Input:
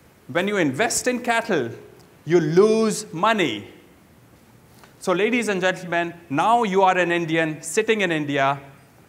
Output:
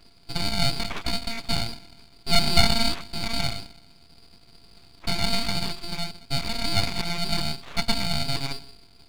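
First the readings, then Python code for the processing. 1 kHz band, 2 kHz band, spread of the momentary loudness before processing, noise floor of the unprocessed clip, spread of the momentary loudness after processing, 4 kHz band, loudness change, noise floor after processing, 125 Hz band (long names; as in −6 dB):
−11.0 dB, −8.5 dB, 8 LU, −52 dBFS, 13 LU, +6.5 dB, −5.5 dB, −53 dBFS, −0.5 dB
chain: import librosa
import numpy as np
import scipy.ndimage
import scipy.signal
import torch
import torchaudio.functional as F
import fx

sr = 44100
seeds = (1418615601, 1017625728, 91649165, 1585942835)

y = fx.bit_reversed(x, sr, seeds[0], block=64)
y = fx.freq_invert(y, sr, carrier_hz=2500)
y = np.abs(y)
y = F.gain(torch.from_numpy(y), 3.0).numpy()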